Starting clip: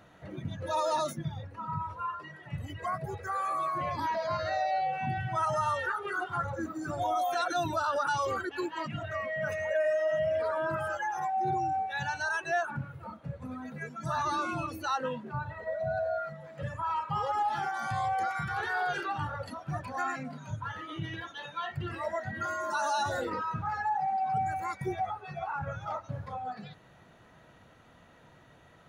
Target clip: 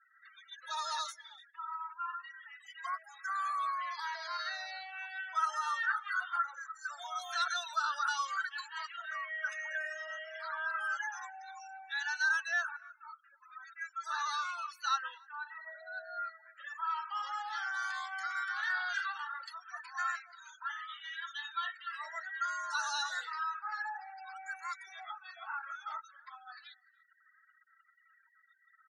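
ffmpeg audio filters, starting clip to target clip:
-filter_complex "[0:a]highpass=f=1400:w=0.5412,highpass=f=1400:w=1.3066,afftfilt=real='re*gte(hypot(re,im),0.002)':imag='im*gte(hypot(re,im),0.002)':win_size=1024:overlap=0.75,lowpass=5700,equalizer=f=2500:w=2.6:g=-10,aecho=1:1:4.5:0.31,asplit=2[s0][s1];[s1]adelay=291.5,volume=0.0398,highshelf=f=4000:g=-6.56[s2];[s0][s2]amix=inputs=2:normalize=0,volume=1.68"

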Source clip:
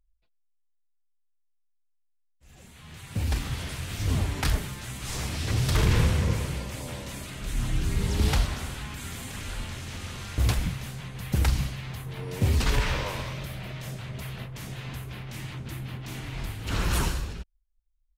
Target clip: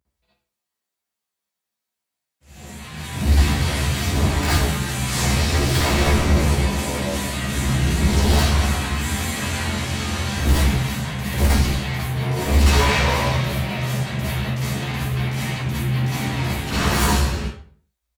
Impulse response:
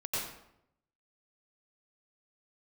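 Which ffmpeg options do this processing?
-filter_complex "[0:a]highpass=f=72:w=0.5412,highpass=f=72:w=1.3066,asplit=2[s0][s1];[s1]aeval=exprs='0.266*sin(PI/2*5.01*val(0)/0.266)':c=same,volume=0.631[s2];[s0][s2]amix=inputs=2:normalize=0,asplit=2[s3][s4];[s4]adelay=14,volume=0.668[s5];[s3][s5]amix=inputs=2:normalize=0[s6];[1:a]atrim=start_sample=2205,asetrate=74970,aresample=44100[s7];[s6][s7]afir=irnorm=-1:irlink=0,volume=0.668"

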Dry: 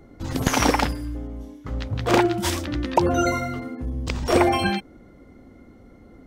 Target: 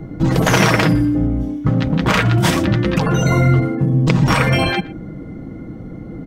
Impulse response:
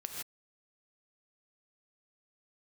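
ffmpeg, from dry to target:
-filter_complex "[0:a]afftfilt=real='re*lt(hypot(re,im),0.282)':imag='im*lt(hypot(re,im),0.282)':win_size=1024:overlap=0.75,equalizer=f=140:w=0.61:g=12.5,aecho=1:1:6.3:0.44,acrossover=split=3100[s0][s1];[s0]acontrast=89[s2];[s2][s1]amix=inputs=2:normalize=0,asplit=2[s3][s4];[s4]adelay=120,highpass=300,lowpass=3400,asoftclip=type=hard:threshold=0.188,volume=0.112[s5];[s3][s5]amix=inputs=2:normalize=0,volume=1.33"

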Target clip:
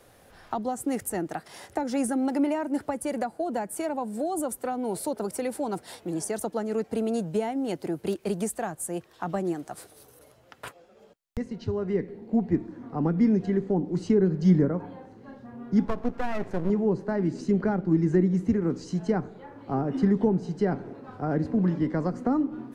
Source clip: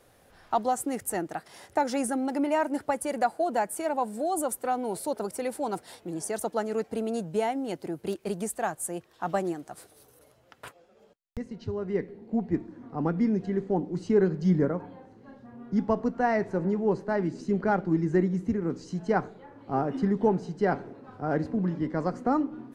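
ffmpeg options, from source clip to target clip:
-filter_complex "[0:a]asettb=1/sr,asplit=3[s0][s1][s2];[s0]atrim=end=15.854[s3];[s1]atrim=start=15.85:end=16.7,asetpts=PTS-STARTPTS,afade=t=in:d=0.004:c=qsin,afade=t=out:st=0.846:d=0.004:c=qsin,aeval=exprs='max(val(0),0)':c=same[s4];[s2]atrim=start=16.696[s5];[s3][s4]acrossfade=d=0.004:c1=hsin:c2=qsin[s6];[s6][s5]acrossfade=d=0.004:c1=qsin:c2=hsin,acrossover=split=360[s7][s8];[s8]acompressor=threshold=0.02:ratio=6[s9];[s7][s9]amix=inputs=2:normalize=0,volume=1.58"

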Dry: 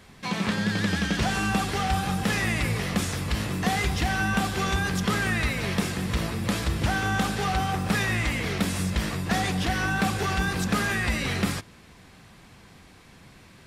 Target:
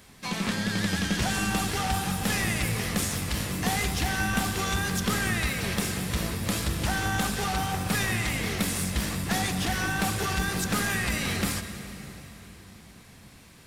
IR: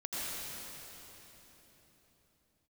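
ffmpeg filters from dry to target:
-filter_complex "[0:a]highshelf=f=6300:g=11.5,asplit=2[s0][s1];[s1]asetrate=52444,aresample=44100,atempo=0.840896,volume=0.2[s2];[s0][s2]amix=inputs=2:normalize=0,asplit=2[s3][s4];[1:a]atrim=start_sample=2205[s5];[s4][s5]afir=irnorm=-1:irlink=0,volume=0.251[s6];[s3][s6]amix=inputs=2:normalize=0,aeval=exprs='0.335*(cos(1*acos(clip(val(0)/0.335,-1,1)))-cos(1*PI/2))+0.0168*(cos(4*acos(clip(val(0)/0.335,-1,1)))-cos(4*PI/2))':c=same,volume=0.596"

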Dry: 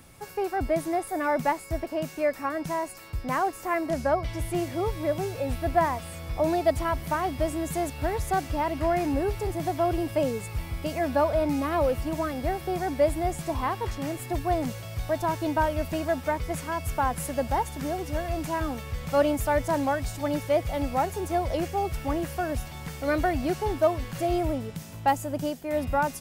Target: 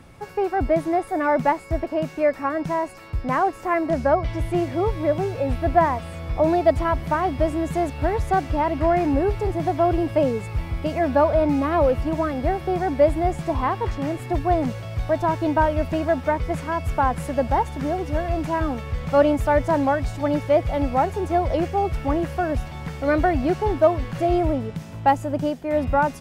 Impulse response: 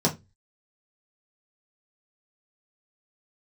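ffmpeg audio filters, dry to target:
-af "aemphasis=mode=reproduction:type=75kf,volume=2"

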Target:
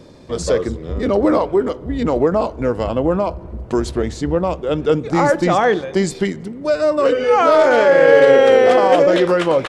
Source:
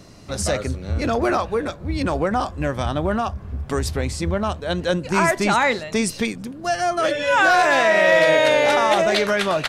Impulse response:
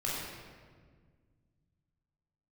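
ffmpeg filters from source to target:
-filter_complex "[0:a]asetrate=38170,aresample=44100,atempo=1.15535,equalizer=f=410:t=o:w=2.2:g=10.5,asplit=2[s0][s1];[1:a]atrim=start_sample=2205,lowpass=3900[s2];[s1][s2]afir=irnorm=-1:irlink=0,volume=0.0501[s3];[s0][s3]amix=inputs=2:normalize=0,volume=0.708"

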